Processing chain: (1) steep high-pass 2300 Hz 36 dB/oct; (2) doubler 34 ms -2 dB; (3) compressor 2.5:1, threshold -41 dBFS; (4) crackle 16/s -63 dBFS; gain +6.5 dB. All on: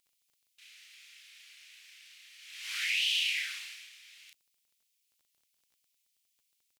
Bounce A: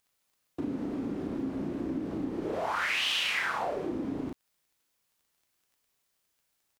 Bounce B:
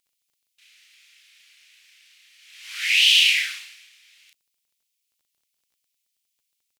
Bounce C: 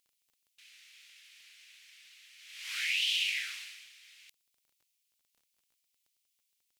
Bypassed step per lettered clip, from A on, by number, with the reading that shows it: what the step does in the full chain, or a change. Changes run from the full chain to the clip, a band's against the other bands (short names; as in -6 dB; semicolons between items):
1, 1 kHz band +27.5 dB; 3, mean gain reduction 6.0 dB; 2, momentary loudness spread change +1 LU